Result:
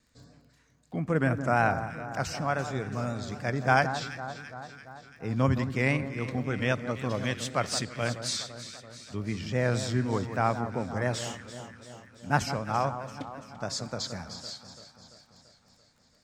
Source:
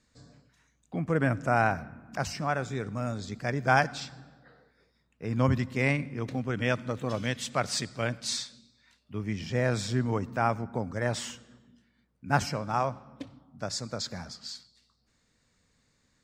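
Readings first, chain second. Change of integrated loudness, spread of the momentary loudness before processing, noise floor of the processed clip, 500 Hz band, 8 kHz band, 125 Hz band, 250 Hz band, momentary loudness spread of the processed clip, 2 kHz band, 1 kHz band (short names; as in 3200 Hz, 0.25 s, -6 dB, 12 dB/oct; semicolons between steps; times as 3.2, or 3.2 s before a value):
0.0 dB, 15 LU, -64 dBFS, +0.5 dB, +0.5 dB, +0.5 dB, +0.5 dB, 16 LU, +0.5 dB, +0.5 dB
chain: crackle 17/s -52 dBFS; echo with dull and thin repeats by turns 0.169 s, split 1500 Hz, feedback 77%, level -10 dB; vibrato 3.9 Hz 44 cents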